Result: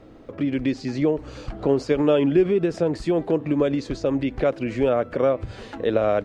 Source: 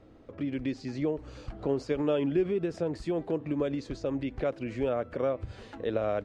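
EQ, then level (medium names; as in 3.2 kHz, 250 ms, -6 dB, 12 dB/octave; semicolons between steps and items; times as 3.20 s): peaking EQ 76 Hz -6 dB 0.77 oct; +9.0 dB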